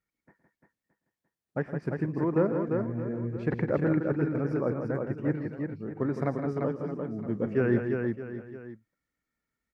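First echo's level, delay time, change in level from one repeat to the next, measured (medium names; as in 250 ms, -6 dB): -15.5 dB, 115 ms, no regular repeats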